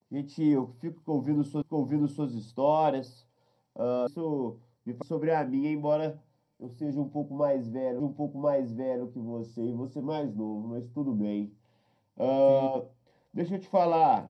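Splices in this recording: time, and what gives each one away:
1.62 repeat of the last 0.64 s
4.07 sound cut off
5.02 sound cut off
8 repeat of the last 1.04 s

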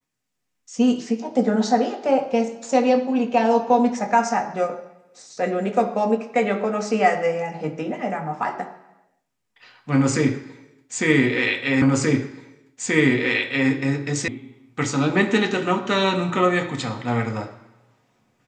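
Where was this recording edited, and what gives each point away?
11.82 repeat of the last 1.88 s
14.28 sound cut off

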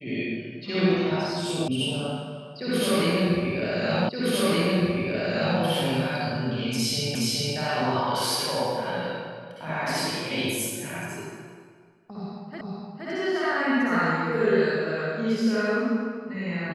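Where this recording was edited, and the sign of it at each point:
1.68 sound cut off
4.09 repeat of the last 1.52 s
7.15 repeat of the last 0.42 s
12.61 repeat of the last 0.47 s

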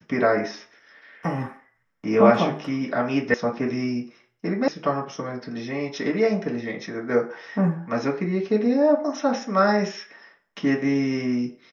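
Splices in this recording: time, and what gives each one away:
3.34 sound cut off
4.68 sound cut off

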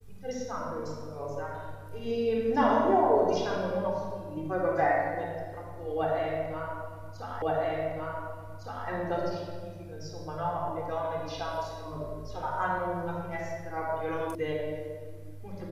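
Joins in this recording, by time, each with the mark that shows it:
7.42 repeat of the last 1.46 s
14.35 sound cut off

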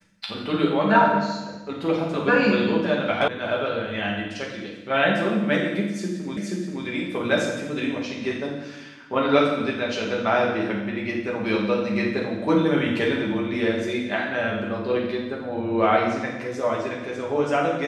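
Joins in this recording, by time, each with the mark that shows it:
3.28 sound cut off
6.37 repeat of the last 0.48 s

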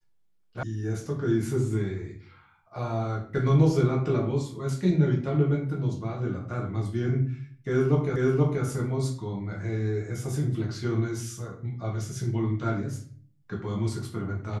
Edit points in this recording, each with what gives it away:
0.63 sound cut off
8.16 repeat of the last 0.48 s

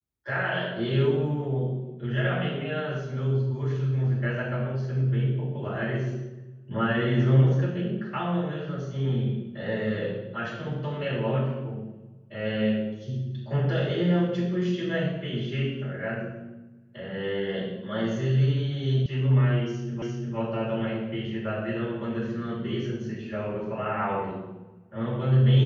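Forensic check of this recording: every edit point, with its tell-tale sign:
19.06 sound cut off
20.02 repeat of the last 0.35 s

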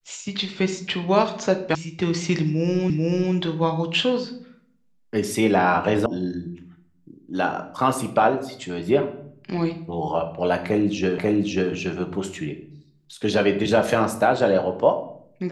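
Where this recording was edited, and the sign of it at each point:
1.75 sound cut off
2.9 repeat of the last 0.44 s
6.06 sound cut off
11.18 repeat of the last 0.54 s

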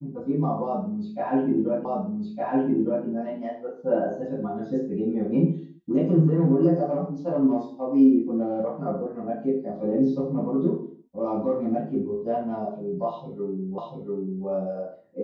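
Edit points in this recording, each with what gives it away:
1.85 repeat of the last 1.21 s
13.78 repeat of the last 0.69 s

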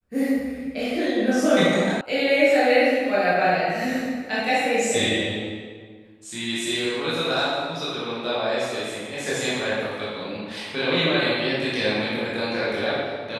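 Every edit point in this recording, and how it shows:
2.01 sound cut off

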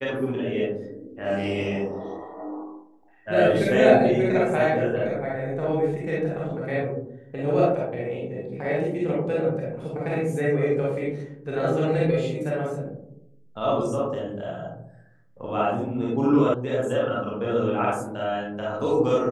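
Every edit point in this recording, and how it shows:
16.54 sound cut off

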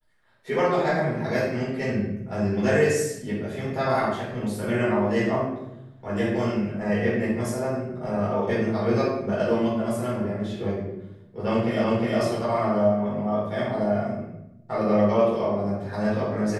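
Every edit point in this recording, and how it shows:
11.84 repeat of the last 0.36 s

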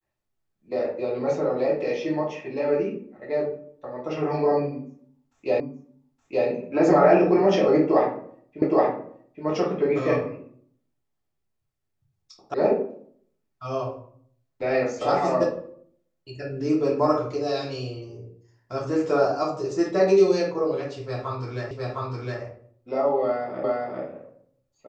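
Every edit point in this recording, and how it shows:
5.6 repeat of the last 0.87 s
8.62 repeat of the last 0.82 s
12.54 sound cut off
21.71 repeat of the last 0.71 s
23.64 repeat of the last 0.4 s

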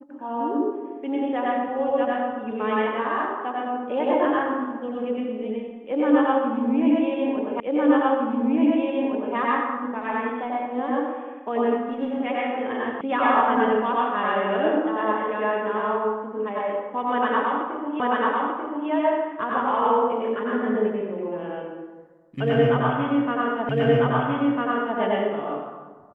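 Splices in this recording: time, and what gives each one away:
7.6 repeat of the last 1.76 s
13.01 sound cut off
18 repeat of the last 0.89 s
23.69 repeat of the last 1.3 s

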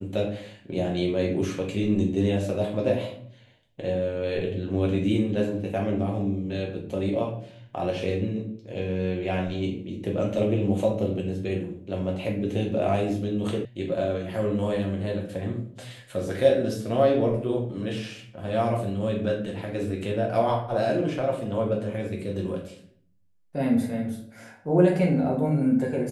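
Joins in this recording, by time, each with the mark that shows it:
13.65 sound cut off

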